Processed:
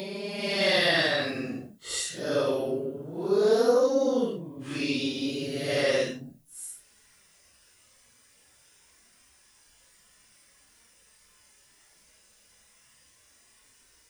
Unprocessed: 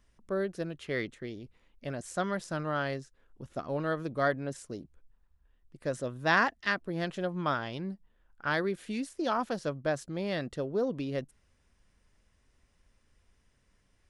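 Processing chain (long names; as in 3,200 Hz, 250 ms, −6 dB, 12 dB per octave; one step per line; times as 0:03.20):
extreme stretch with random phases 6.1×, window 0.05 s, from 0:10.21
automatic gain control gain up to 9 dB
RIAA equalisation recording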